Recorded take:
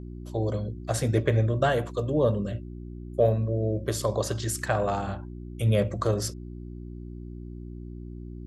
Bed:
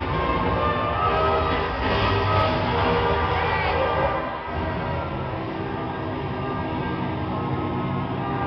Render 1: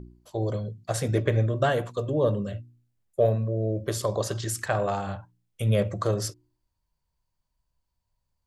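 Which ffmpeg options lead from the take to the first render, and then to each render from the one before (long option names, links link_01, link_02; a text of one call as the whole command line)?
ffmpeg -i in.wav -af "bandreject=frequency=60:width_type=h:width=4,bandreject=frequency=120:width_type=h:width=4,bandreject=frequency=180:width_type=h:width=4,bandreject=frequency=240:width_type=h:width=4,bandreject=frequency=300:width_type=h:width=4,bandreject=frequency=360:width_type=h:width=4" out.wav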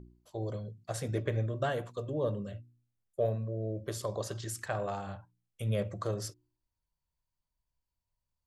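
ffmpeg -i in.wav -af "volume=-8.5dB" out.wav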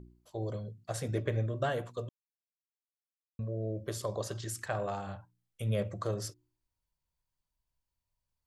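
ffmpeg -i in.wav -filter_complex "[0:a]asplit=3[link_01][link_02][link_03];[link_01]atrim=end=2.09,asetpts=PTS-STARTPTS,afade=type=out:start_time=2.086:duration=0.004:curve=hsin[link_04];[link_02]atrim=start=2.09:end=3.39,asetpts=PTS-STARTPTS,volume=0[link_05];[link_03]atrim=start=3.39,asetpts=PTS-STARTPTS,afade=type=in:duration=0.004:curve=hsin[link_06];[link_04][link_05][link_06]concat=n=3:v=0:a=1" out.wav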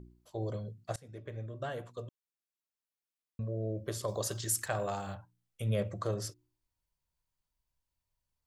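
ffmpeg -i in.wav -filter_complex "[0:a]asettb=1/sr,asplit=3[link_01][link_02][link_03];[link_01]atrim=end=4.084[link_04];[link_02]atrim=start=4.08:end=5.15,asetpts=PTS-STARTPTS,afade=type=in:duration=0.004:curve=qsin,afade=type=out:start_time=1.066:duration=0.004:curve=qsin,aemphasis=mode=production:type=50kf[link_05];[link_03]atrim=start=5.146[link_06];[link_04][link_05]acrossfade=duration=0.004:curve1=hsin:curve2=qsin[link_07];[link_07][link_06]acrossfade=duration=0.004:curve1=qsin:curve2=hsin,asplit=2[link_08][link_09];[link_08]atrim=end=0.96,asetpts=PTS-STARTPTS,afade=type=out:start_time=0.956:duration=0.004:curve=hsin:silence=0.0794328[link_10];[link_09]atrim=start=0.96,asetpts=PTS-STARTPTS,afade=type=in:duration=2.58:curve=qsin:silence=0.0794328[link_11];[link_10][link_11]concat=n=2:v=0:a=1" out.wav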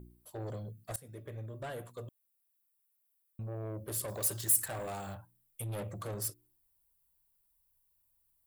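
ffmpeg -i in.wav -af "asoftclip=type=tanh:threshold=-35.5dB,aexciter=amount=6.8:drive=4.6:freq=8600" out.wav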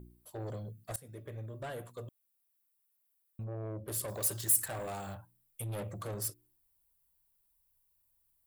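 ffmpeg -i in.wav -filter_complex "[0:a]asettb=1/sr,asplit=3[link_01][link_02][link_03];[link_01]atrim=end=3.444[link_04];[link_02]atrim=start=3.44:end=3.88,asetpts=PTS-STARTPTS,afade=type=in:duration=0.004:curve=qsin,afade=type=out:start_time=0.436:duration=0.004:curve=qsin,aemphasis=mode=reproduction:type=50kf[link_05];[link_03]atrim=start=3.876[link_06];[link_04][link_05]acrossfade=duration=0.004:curve1=hsin:curve2=qsin[link_07];[link_07][link_06]acrossfade=duration=0.004:curve1=qsin:curve2=hsin" out.wav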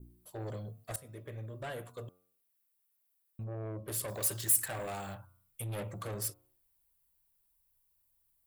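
ffmpeg -i in.wav -af "bandreject=frequency=90.66:width_type=h:width=4,bandreject=frequency=181.32:width_type=h:width=4,bandreject=frequency=271.98:width_type=h:width=4,bandreject=frequency=362.64:width_type=h:width=4,bandreject=frequency=453.3:width_type=h:width=4,bandreject=frequency=543.96:width_type=h:width=4,bandreject=frequency=634.62:width_type=h:width=4,bandreject=frequency=725.28:width_type=h:width=4,bandreject=frequency=815.94:width_type=h:width=4,bandreject=frequency=906.6:width_type=h:width=4,bandreject=frequency=997.26:width_type=h:width=4,bandreject=frequency=1087.92:width_type=h:width=4,bandreject=frequency=1178.58:width_type=h:width=4,bandreject=frequency=1269.24:width_type=h:width=4,bandreject=frequency=1359.9:width_type=h:width=4,bandreject=frequency=1450.56:width_type=h:width=4,adynamicequalizer=threshold=0.00126:dfrequency=2300:dqfactor=0.95:tfrequency=2300:tqfactor=0.95:attack=5:release=100:ratio=0.375:range=2:mode=boostabove:tftype=bell" out.wav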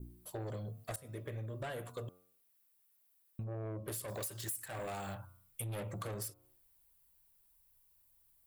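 ffmpeg -i in.wav -filter_complex "[0:a]asplit=2[link_01][link_02];[link_02]alimiter=level_in=2.5dB:limit=-24dB:level=0:latency=1:release=110,volume=-2.5dB,volume=-3dB[link_03];[link_01][link_03]amix=inputs=2:normalize=0,acompressor=threshold=-39dB:ratio=8" out.wav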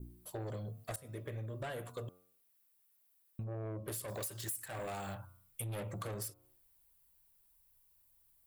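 ffmpeg -i in.wav -af anull out.wav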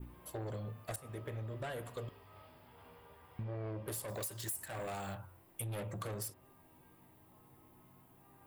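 ffmpeg -i in.wav -i bed.wav -filter_complex "[1:a]volume=-38dB[link_01];[0:a][link_01]amix=inputs=2:normalize=0" out.wav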